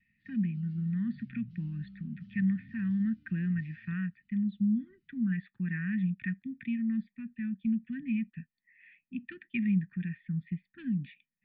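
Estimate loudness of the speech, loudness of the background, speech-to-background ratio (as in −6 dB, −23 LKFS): −34.0 LKFS, −53.0 LKFS, 19.0 dB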